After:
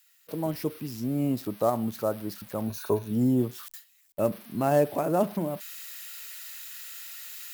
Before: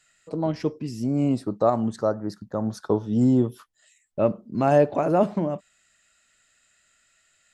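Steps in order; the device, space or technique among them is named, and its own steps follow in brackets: budget class-D amplifier (dead-time distortion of 0.064 ms; zero-crossing glitches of -24.5 dBFS); 2.67–3.11 s: rippled EQ curve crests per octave 1.5, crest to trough 9 dB; gate with hold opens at -29 dBFS; trim -4.5 dB

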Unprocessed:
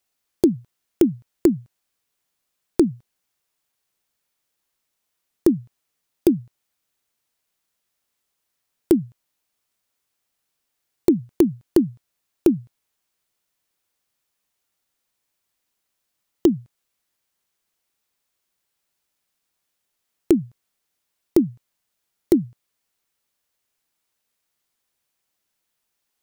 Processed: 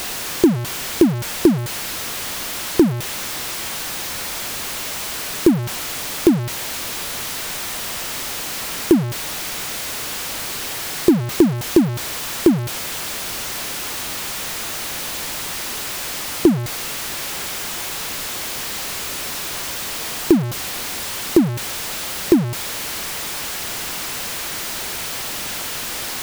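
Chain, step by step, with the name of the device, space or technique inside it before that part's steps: early CD player with a faulty converter (jump at every zero crossing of -21 dBFS; sampling jitter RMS 0.025 ms); trim +2 dB

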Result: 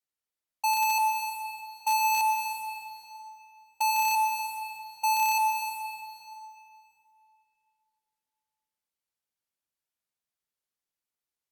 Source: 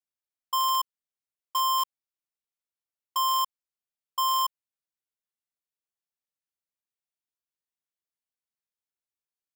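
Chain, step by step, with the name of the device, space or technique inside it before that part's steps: slowed and reverbed (tape speed -17%; reverberation RT60 2.8 s, pre-delay 83 ms, DRR 2 dB)

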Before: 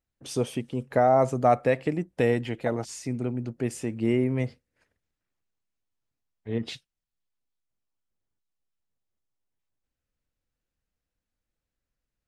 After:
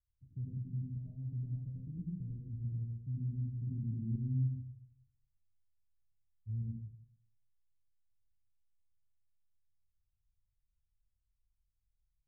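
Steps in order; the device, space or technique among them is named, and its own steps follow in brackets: club heard from the street (peak limiter -18.5 dBFS, peak gain reduction 9 dB; low-pass 120 Hz 24 dB/octave; reverberation RT60 0.65 s, pre-delay 72 ms, DRR -4.5 dB); 3.67–4.16 s: peaking EQ 220 Hz +8.5 dB 1.1 oct

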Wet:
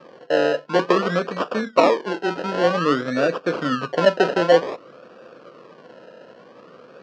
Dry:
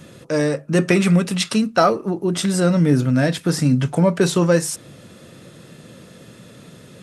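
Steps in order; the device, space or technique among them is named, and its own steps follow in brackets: circuit-bent sampling toy (decimation with a swept rate 30×, swing 60% 0.53 Hz; cabinet simulation 410–4300 Hz, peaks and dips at 500 Hz +6 dB, 840 Hz -7 dB, 1.2 kHz +5 dB, 2.1 kHz -10 dB, 3.6 kHz -9 dB); trim +2 dB

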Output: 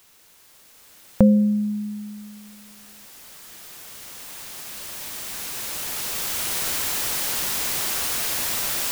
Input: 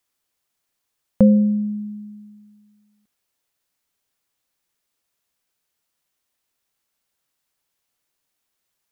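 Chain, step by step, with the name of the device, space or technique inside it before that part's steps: cheap recorder with automatic gain (white noise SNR 26 dB; recorder AGC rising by 5.7 dB/s); trim -2 dB

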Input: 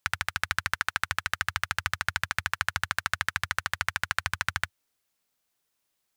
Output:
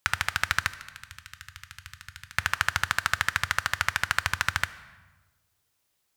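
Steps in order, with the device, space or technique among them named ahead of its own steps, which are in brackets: 0.72–2.35 s: amplifier tone stack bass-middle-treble 6-0-2; saturated reverb return (on a send at -10 dB: reverberation RT60 1.2 s, pre-delay 10 ms + saturation -35 dBFS, distortion -8 dB); on the sum: trim +3 dB

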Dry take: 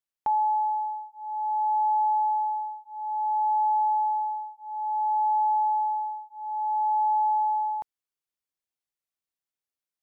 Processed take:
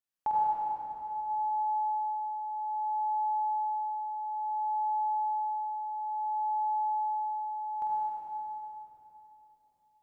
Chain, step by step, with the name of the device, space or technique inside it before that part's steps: tunnel (flutter echo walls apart 8.5 m, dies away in 0.53 s; reverberation RT60 3.6 s, pre-delay 69 ms, DRR -5 dB); trim -4.5 dB

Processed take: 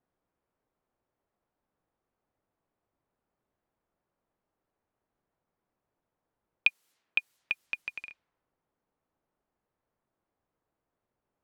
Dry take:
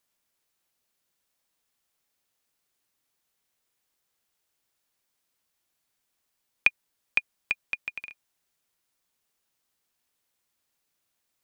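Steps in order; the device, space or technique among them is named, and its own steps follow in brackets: cassette deck with a dynamic noise filter (white noise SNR 30 dB; level-controlled noise filter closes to 850 Hz, open at -32 dBFS); 6.67–7.60 s: high-pass 240 Hz -> 75 Hz 6 dB/octave; trim -2.5 dB

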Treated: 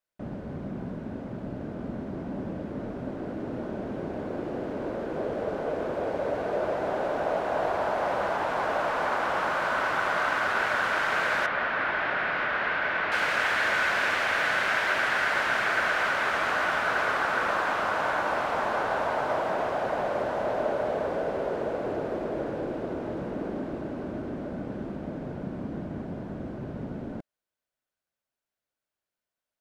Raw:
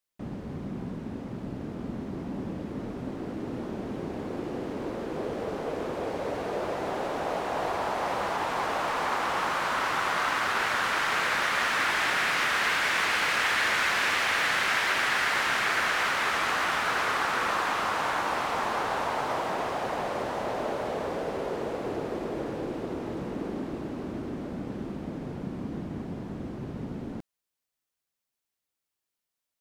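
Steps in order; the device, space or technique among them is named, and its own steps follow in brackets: inside a helmet (treble shelf 3.6 kHz -9 dB; small resonant body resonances 610/1500 Hz, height 7 dB, ringing for 20 ms); 11.46–13.12 s: distance through air 290 m

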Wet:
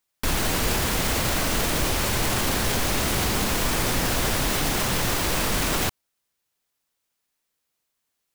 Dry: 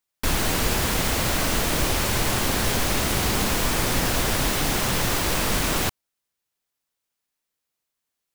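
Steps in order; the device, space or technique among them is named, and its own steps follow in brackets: clipper into limiter (hard clipper -13 dBFS, distortion -34 dB; peak limiter -18.5 dBFS, peak gain reduction 5.5 dB); trim +4 dB

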